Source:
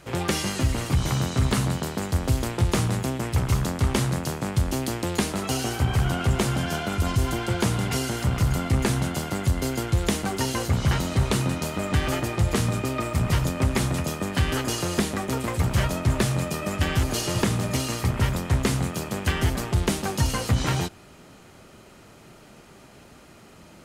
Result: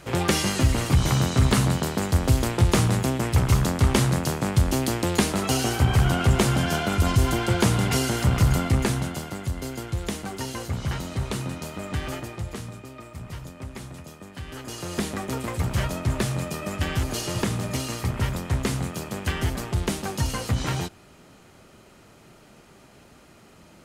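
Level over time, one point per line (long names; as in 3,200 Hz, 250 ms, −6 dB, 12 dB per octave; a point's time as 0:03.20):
0:08.54 +3 dB
0:09.39 −6 dB
0:12.09 −6 dB
0:12.81 −14.5 dB
0:14.43 −14.5 dB
0:15.06 −2.5 dB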